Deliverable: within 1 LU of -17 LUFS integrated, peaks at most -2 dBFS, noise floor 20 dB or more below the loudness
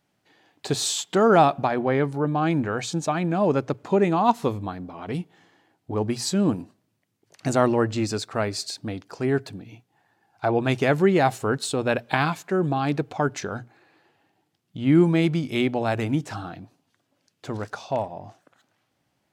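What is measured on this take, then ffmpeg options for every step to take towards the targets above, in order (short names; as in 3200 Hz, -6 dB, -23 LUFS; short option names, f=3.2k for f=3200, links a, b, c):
loudness -24.0 LUFS; peak -4.5 dBFS; loudness target -17.0 LUFS
-> -af "volume=7dB,alimiter=limit=-2dB:level=0:latency=1"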